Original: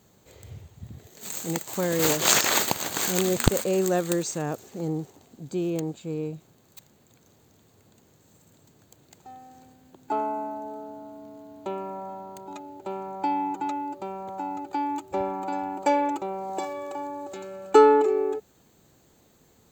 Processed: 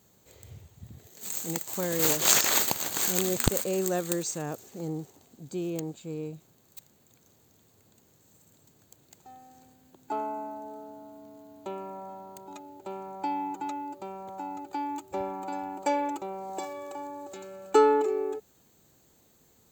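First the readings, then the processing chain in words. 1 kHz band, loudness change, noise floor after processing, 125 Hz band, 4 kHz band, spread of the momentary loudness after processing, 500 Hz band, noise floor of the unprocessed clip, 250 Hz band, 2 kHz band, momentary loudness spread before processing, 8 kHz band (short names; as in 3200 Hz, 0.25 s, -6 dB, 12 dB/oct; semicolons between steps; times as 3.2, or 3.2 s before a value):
-5.0 dB, -3.0 dB, -63 dBFS, -5.0 dB, -3.0 dB, 21 LU, -5.0 dB, -61 dBFS, -5.0 dB, -4.5 dB, 21 LU, -0.5 dB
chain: high shelf 5900 Hz +7.5 dB; gain -5 dB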